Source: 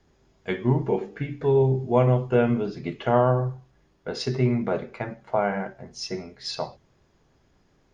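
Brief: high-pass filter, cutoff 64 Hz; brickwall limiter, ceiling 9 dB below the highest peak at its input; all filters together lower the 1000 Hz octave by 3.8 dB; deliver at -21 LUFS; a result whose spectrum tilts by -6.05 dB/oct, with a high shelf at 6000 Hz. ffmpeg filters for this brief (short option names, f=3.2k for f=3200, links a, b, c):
-af "highpass=64,equalizer=f=1k:t=o:g=-5.5,highshelf=f=6k:g=4.5,volume=8dB,alimiter=limit=-8.5dB:level=0:latency=1"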